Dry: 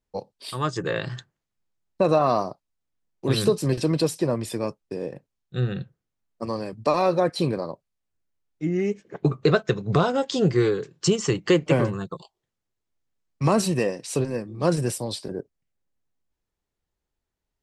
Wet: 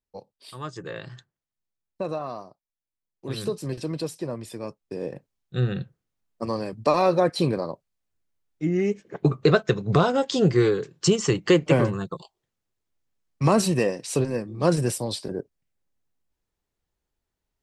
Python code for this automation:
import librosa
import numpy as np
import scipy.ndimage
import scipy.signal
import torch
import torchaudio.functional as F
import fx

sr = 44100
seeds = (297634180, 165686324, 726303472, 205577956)

y = fx.gain(x, sr, db=fx.line((2.01, -9.0), (2.5, -16.0), (3.52, -7.5), (4.58, -7.5), (5.12, 1.0)))